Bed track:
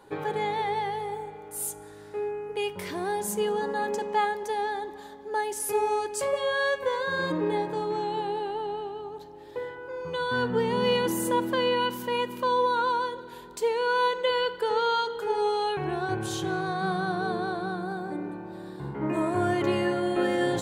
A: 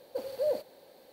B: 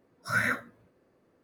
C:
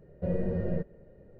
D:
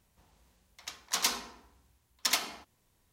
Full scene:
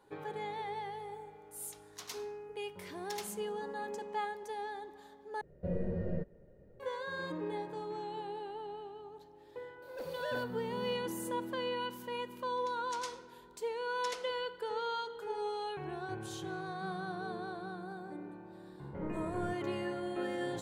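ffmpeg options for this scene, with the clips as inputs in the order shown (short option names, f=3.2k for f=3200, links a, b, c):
-filter_complex "[4:a]asplit=2[a][b];[3:a]asplit=2[c][d];[0:a]volume=-11.5dB[e];[1:a]volume=34dB,asoftclip=hard,volume=-34dB[f];[b]lowpass=f=10k:w=0.5412,lowpass=f=10k:w=1.3066[g];[e]asplit=2[h][i];[h]atrim=end=5.414[j];[c]atrim=end=1.39,asetpts=PTS-STARTPTS,volume=-5.5dB[k];[i]atrim=start=6.796[l];[a]atrim=end=3.12,asetpts=PTS-STARTPTS,volume=-17dB,afade=t=in:d=0.004:c=hsin,afade=t=out:st=3.116:d=0.004:c=hsin,adelay=850[m];[f]atrim=end=1.12,asetpts=PTS-STARTPTS,volume=-4dB,afade=t=in:d=0.004:c=hsin,afade=t=out:st=1.116:d=0.004:c=hsin,adelay=9820[n];[g]atrim=end=3.12,asetpts=PTS-STARTPTS,volume=-16.5dB,afade=t=in:d=0.004:c=hsin,afade=t=out:st=3.116:d=0.004:c=hsin,adelay=11790[o];[d]atrim=end=1.39,asetpts=PTS-STARTPTS,volume=-14.5dB,afade=t=in:d=0.004:c=hsin,afade=t=out:st=1.386:d=0.004:c=hsin,adelay=18710[p];[j][k]acrossfade=d=0.004:c1=hsin:c2=hsin[q];[q][l]acrossfade=d=0.004:c1=hsin:c2=hsin[r];[r][m][n][o][p]amix=inputs=5:normalize=0"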